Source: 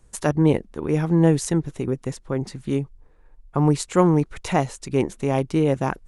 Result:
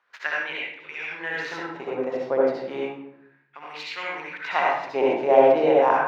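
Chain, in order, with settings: median filter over 5 samples; peaking EQ 1.2 kHz -4.5 dB 0.38 oct; LFO high-pass sine 0.33 Hz 610–2500 Hz; distance through air 260 m; reverberation RT60 0.75 s, pre-delay 60 ms, DRR -4.5 dB; trim +1.5 dB

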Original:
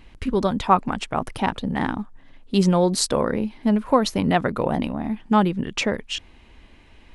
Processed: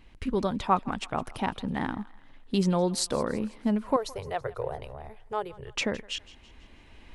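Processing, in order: recorder AGC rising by 5.1 dB/s; 3.96–5.75 s: FFT filter 130 Hz 0 dB, 190 Hz -26 dB, 290 Hz -26 dB, 410 Hz +1 dB, 860 Hz -5 dB, 3.2 kHz -8 dB, 8.2 kHz -3 dB; thinning echo 164 ms, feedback 52%, high-pass 720 Hz, level -19 dB; trim -7 dB

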